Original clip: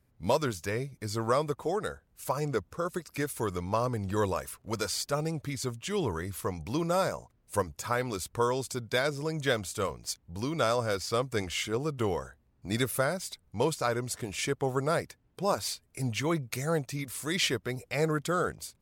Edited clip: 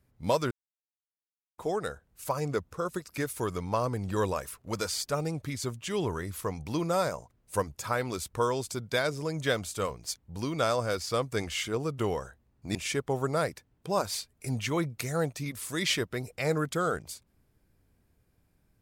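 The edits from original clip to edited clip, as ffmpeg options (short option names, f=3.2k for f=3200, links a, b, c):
-filter_complex "[0:a]asplit=4[a][b][c][d];[a]atrim=end=0.51,asetpts=PTS-STARTPTS,afade=t=out:st=0.506:d=0.004:c=hsin[e];[b]atrim=start=0.51:end=1.58,asetpts=PTS-STARTPTS,volume=0[f];[c]atrim=start=1.58:end=12.752,asetpts=PTS-STARTPTS,afade=t=in:d=0.004:c=hsin[g];[d]atrim=start=14.278[h];[e][f][g]concat=n=3:v=0:a=1[i];[i][h]acrossfade=d=0.004:c1=hsin:c2=hsin"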